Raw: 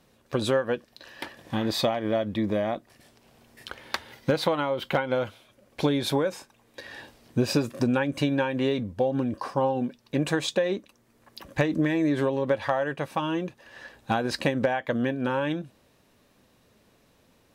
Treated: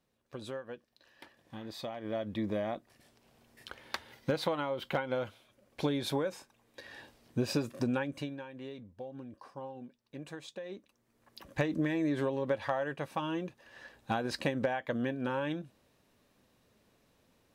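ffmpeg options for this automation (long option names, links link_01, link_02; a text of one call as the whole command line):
ffmpeg -i in.wav -af "volume=4.5dB,afade=type=in:start_time=1.82:duration=0.53:silence=0.334965,afade=type=out:start_time=7.95:duration=0.43:silence=0.266073,afade=type=in:start_time=10.59:duration=0.88:silence=0.251189" out.wav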